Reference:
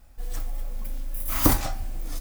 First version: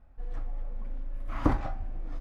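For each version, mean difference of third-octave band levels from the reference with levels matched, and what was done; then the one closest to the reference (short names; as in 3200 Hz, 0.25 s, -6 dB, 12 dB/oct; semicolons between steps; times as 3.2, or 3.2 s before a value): 9.5 dB: LPF 1600 Hz 12 dB/oct; gain -4 dB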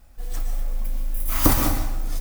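3.0 dB: plate-style reverb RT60 0.88 s, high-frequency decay 0.8×, pre-delay 0.105 s, DRR 4 dB; gain +1.5 dB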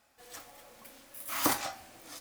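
4.5 dB: weighting filter A; gain -3 dB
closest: second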